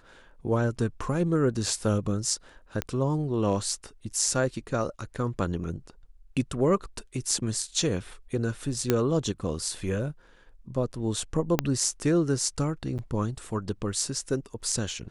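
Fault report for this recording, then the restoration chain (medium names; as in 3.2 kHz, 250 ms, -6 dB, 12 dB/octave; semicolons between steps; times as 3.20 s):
2.82 s: pop -13 dBFS
8.90 s: pop -8 dBFS
11.59 s: pop -7 dBFS
12.98–12.99 s: dropout 8.2 ms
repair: de-click; interpolate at 12.98 s, 8.2 ms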